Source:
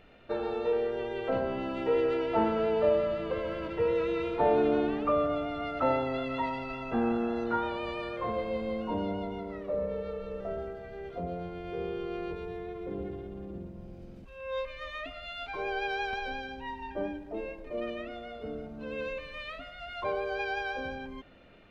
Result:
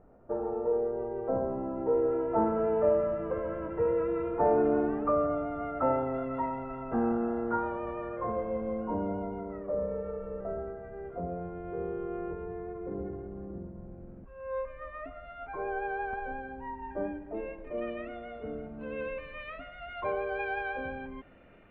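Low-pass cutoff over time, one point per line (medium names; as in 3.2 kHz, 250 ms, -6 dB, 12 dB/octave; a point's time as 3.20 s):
low-pass 24 dB/octave
1.85 s 1.1 kHz
2.78 s 1.6 kHz
16.73 s 1.6 kHz
17.51 s 2.5 kHz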